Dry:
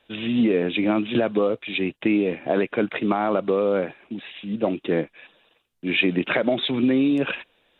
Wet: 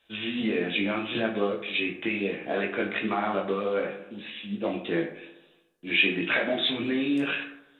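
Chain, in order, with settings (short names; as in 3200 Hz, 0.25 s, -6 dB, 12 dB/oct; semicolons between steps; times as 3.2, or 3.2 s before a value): high shelf 2400 Hz +9.5 dB; analogue delay 74 ms, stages 1024, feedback 62%, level -12 dB; chorus 1.6 Hz, delay 18 ms, depth 2.7 ms; on a send at -3 dB: reverb RT60 0.40 s, pre-delay 6 ms; on the sum: dynamic EQ 1800 Hz, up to +4 dB, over -39 dBFS, Q 1.1; gain -6 dB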